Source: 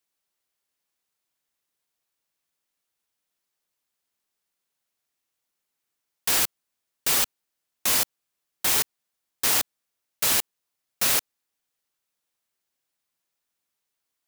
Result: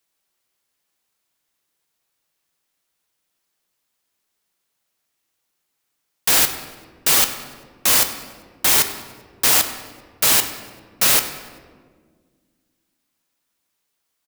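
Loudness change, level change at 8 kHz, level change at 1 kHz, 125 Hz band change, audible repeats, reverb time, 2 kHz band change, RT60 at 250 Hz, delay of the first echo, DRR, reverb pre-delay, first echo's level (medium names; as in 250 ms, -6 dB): +7.0 dB, +7.0 dB, +7.5 dB, +7.5 dB, 1, 1.7 s, +7.0 dB, 2.7 s, 98 ms, 7.0 dB, 6 ms, -18.5 dB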